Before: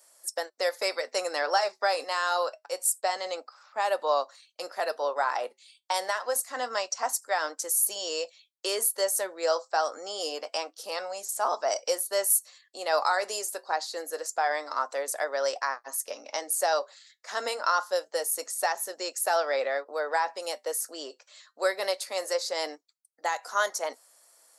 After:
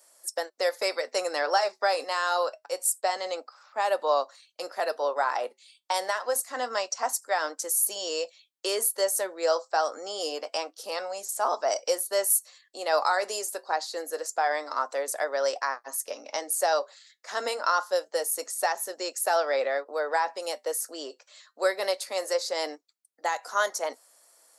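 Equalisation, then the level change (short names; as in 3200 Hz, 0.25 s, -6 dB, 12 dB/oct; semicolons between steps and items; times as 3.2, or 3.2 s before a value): HPF 180 Hz; low shelf 400 Hz +5 dB; 0.0 dB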